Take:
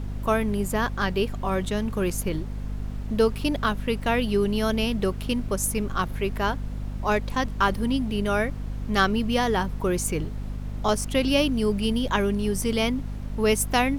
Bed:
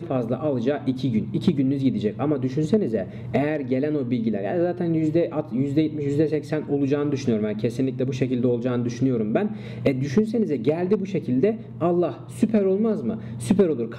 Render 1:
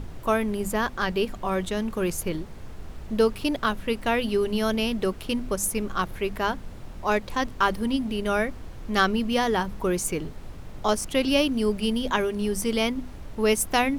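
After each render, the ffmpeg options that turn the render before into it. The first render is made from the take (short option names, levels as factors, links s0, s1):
-af "bandreject=f=50:t=h:w=6,bandreject=f=100:t=h:w=6,bandreject=f=150:t=h:w=6,bandreject=f=200:t=h:w=6,bandreject=f=250:t=h:w=6"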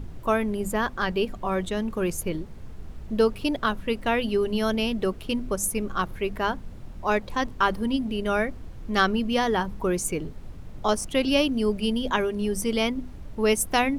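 -af "afftdn=nr=6:nf=-40"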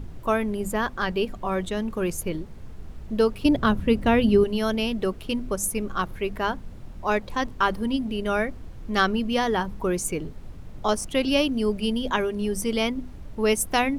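-filter_complex "[0:a]asettb=1/sr,asplit=3[s0][s1][s2];[s0]atrim=end=3.454[s3];[s1]atrim=start=3.45:end=4.44,asetpts=PTS-STARTPTS,afade=t=in:d=0.004:c=qsin,afade=t=out:st=0.986:d=0.004:c=qsin,equalizer=f=100:w=0.3:g=12[s4];[s2]atrim=start=4.436[s5];[s3][s4]acrossfade=d=0.004:c1=hsin:c2=qsin[s6];[s6][s5]acrossfade=d=0.004:c1=qsin:c2=hsin"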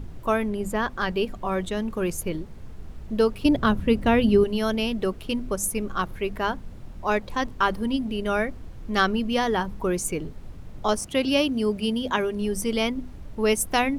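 -filter_complex "[0:a]asettb=1/sr,asplit=3[s0][s1][s2];[s0]atrim=end=0.484[s3];[s1]atrim=start=0.48:end=0.9,asetpts=PTS-STARTPTS,afade=t=in:d=0.004:c=qsin,afade=t=out:st=0.416:d=0.004:c=qsin,highshelf=f=8600:g=-7[s4];[s2]atrim=start=0.896[s5];[s3][s4]acrossfade=d=0.004:c1=hsin:c2=qsin[s6];[s6][s5]acrossfade=d=0.004:c1=qsin:c2=hsin,asettb=1/sr,asplit=3[s7][s8][s9];[s7]atrim=end=11.004[s10];[s8]atrim=start=11:end=12.25,asetpts=PTS-STARTPTS,afade=t=in:d=0.004:c=qsin,afade=t=out:st=1.246:d=0.004:c=qsin,highpass=53[s11];[s9]atrim=start=12.246[s12];[s10][s11]acrossfade=d=0.004:c1=hsin:c2=qsin[s13];[s13][s12]acrossfade=d=0.004:c1=qsin:c2=hsin"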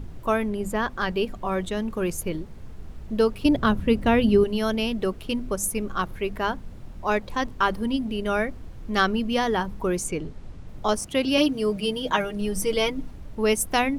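-filter_complex "[0:a]asettb=1/sr,asplit=3[s0][s1][s2];[s0]atrim=end=10.044[s3];[s1]atrim=start=10.04:end=10.68,asetpts=PTS-STARTPTS,afade=t=in:d=0.004:c=qsin,afade=t=out:st=0.636:d=0.004:c=qsin,lowpass=9000[s4];[s2]atrim=start=10.676[s5];[s3][s4]acrossfade=d=0.004:c1=hsin:c2=qsin[s6];[s6][s5]acrossfade=d=0.004:c1=qsin:c2=hsin,asettb=1/sr,asplit=3[s7][s8][s9];[s7]atrim=end=11.374[s10];[s8]atrim=start=11.37:end=13.11,asetpts=PTS-STARTPTS,afade=t=in:d=0.004:c=qsin,afade=t=out:st=1.736:d=0.004:c=qsin,aecho=1:1:6.4:0.74,atrim=end_sample=76734[s11];[s9]atrim=start=13.106[s12];[s10][s11]acrossfade=d=0.004:c1=hsin:c2=qsin[s13];[s13][s12]acrossfade=d=0.004:c1=qsin:c2=hsin"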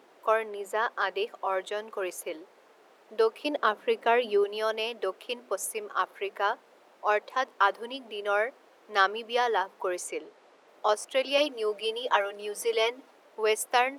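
-af "highpass=f=450:w=0.5412,highpass=f=450:w=1.3066,highshelf=f=3800:g=-8"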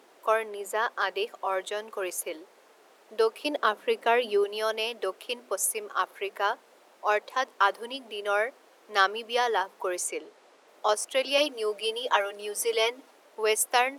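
-af "highpass=170,equalizer=f=11000:w=0.36:g=7.5"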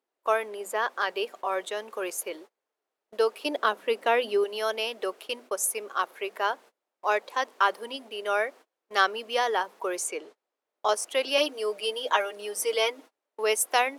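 -af "agate=range=0.0355:threshold=0.00501:ratio=16:detection=peak"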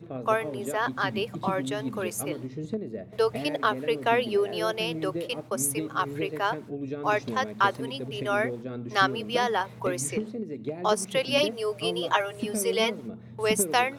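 -filter_complex "[1:a]volume=0.251[s0];[0:a][s0]amix=inputs=2:normalize=0"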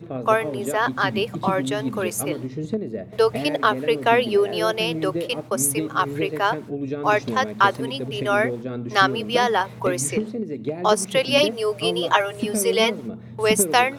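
-af "volume=2,alimiter=limit=0.708:level=0:latency=1"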